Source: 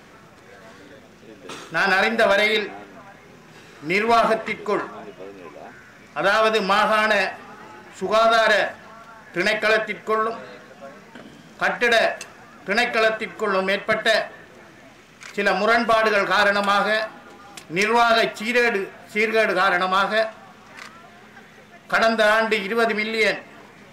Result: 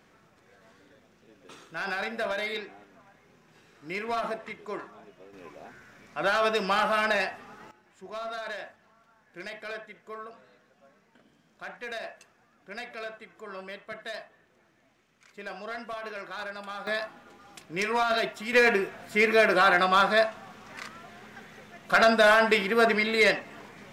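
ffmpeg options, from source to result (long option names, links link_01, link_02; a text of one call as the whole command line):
ffmpeg -i in.wav -af "asetnsamples=nb_out_samples=441:pad=0,asendcmd='5.33 volume volume -7dB;7.71 volume volume -19.5dB;16.87 volume volume -9dB;18.53 volume volume -2dB',volume=-13.5dB" out.wav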